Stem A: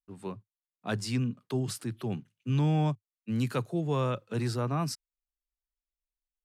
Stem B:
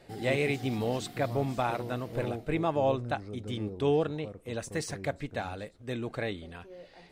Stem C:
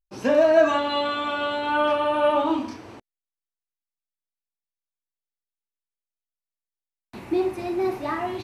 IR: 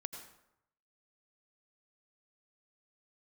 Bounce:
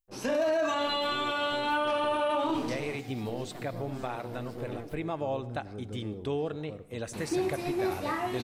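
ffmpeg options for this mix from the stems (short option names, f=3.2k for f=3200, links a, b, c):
-filter_complex "[0:a]aeval=exprs='abs(val(0))':c=same,equalizer=f=340:w=0.41:g=13.5,alimiter=limit=-18dB:level=0:latency=1:release=319,volume=-16dB,asplit=2[a][b];[1:a]acompressor=threshold=-32dB:ratio=2,adelay=2450,volume=-2.5dB,asplit=2[c][d];[d]volume=-6.5dB[e];[2:a]highshelf=f=4k:g=10.5,volume=-7.5dB,asplit=2[f][g];[g]volume=-5dB[h];[b]apad=whole_len=421704[i];[c][i]sidechaincompress=threshold=-39dB:ratio=8:attack=6:release=1400[j];[3:a]atrim=start_sample=2205[k];[e][h]amix=inputs=2:normalize=0[l];[l][k]afir=irnorm=-1:irlink=0[m];[a][j][f][m]amix=inputs=4:normalize=0,alimiter=limit=-21dB:level=0:latency=1:release=18"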